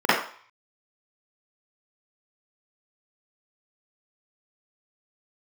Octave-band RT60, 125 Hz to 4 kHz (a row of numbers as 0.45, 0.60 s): 0.35, 0.35, 0.40, 0.55, 0.50, 0.50 s